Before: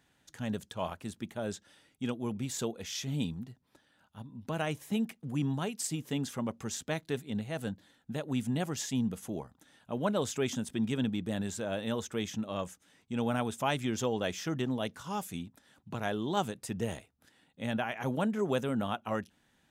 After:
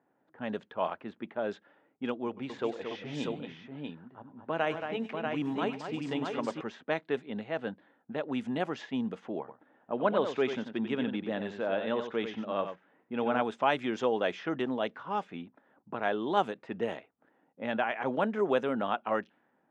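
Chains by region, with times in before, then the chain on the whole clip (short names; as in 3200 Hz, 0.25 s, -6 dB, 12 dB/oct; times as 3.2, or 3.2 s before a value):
2.27–6.61 notch 210 Hz, Q 6.5 + tapped delay 99/226/640 ms -15.5/-7.5/-4.5 dB
9.39–13.42 LPF 5000 Hz + echo 91 ms -8.5 dB
whole clip: LPF 2500 Hz 12 dB/oct; low-pass opened by the level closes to 830 Hz, open at -27.5 dBFS; HPF 320 Hz 12 dB/oct; gain +5 dB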